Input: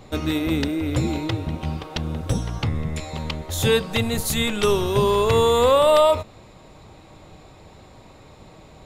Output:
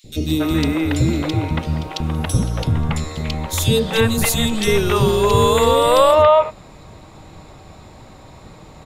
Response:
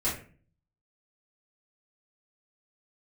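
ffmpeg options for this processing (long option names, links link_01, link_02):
-filter_complex "[0:a]asettb=1/sr,asplit=3[link_01][link_02][link_03];[link_01]atrim=end=2.154[link_04];[link_02]atrim=start=2.15:end=2.72,asetpts=PTS-STARTPTS,afade=type=in:duration=0.004:curve=qsin,afade=type=out:start_time=0.566:duration=0.004:curve=qsin,equalizer=frequency=11000:width=3.8:gain=10.5[link_05];[link_03]atrim=start=2.716[link_06];[link_04][link_05]acrossfade=duration=0.004:curve1=hsin:curve2=qsin[link_07];[link_07][link_06]acrossfade=duration=0.004:curve1=qsin:curve2=hsin,acrossover=split=460|2900[link_08][link_09][link_10];[link_08]adelay=40[link_11];[link_09]adelay=280[link_12];[link_11][link_12][link_10]amix=inputs=3:normalize=0,volume=6dB"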